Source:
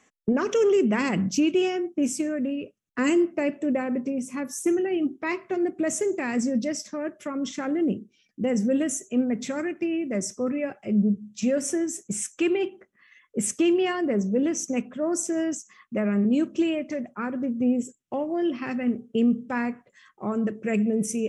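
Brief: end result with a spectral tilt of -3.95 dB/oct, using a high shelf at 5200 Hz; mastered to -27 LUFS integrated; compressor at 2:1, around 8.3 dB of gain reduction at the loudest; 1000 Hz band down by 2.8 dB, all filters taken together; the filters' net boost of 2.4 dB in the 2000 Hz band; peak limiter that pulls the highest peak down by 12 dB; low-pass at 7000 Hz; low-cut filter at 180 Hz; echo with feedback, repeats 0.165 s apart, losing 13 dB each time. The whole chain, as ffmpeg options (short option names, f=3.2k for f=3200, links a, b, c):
-af "highpass=180,lowpass=7k,equalizer=f=1k:t=o:g=-5,equalizer=f=2k:t=o:g=3,highshelf=f=5.2k:g=8,acompressor=threshold=-34dB:ratio=2,alimiter=level_in=7dB:limit=-24dB:level=0:latency=1,volume=-7dB,aecho=1:1:165|330|495:0.224|0.0493|0.0108,volume=11.5dB"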